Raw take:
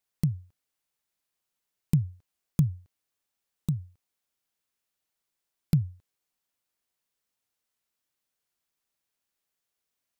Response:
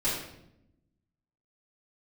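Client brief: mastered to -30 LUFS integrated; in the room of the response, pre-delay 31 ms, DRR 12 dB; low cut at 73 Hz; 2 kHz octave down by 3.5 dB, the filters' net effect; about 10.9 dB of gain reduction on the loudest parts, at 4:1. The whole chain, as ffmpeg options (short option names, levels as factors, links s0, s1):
-filter_complex "[0:a]highpass=73,equalizer=f=2000:t=o:g=-4.5,acompressor=threshold=0.0282:ratio=4,asplit=2[s0][s1];[1:a]atrim=start_sample=2205,adelay=31[s2];[s1][s2]afir=irnorm=-1:irlink=0,volume=0.0891[s3];[s0][s3]amix=inputs=2:normalize=0,volume=3.16"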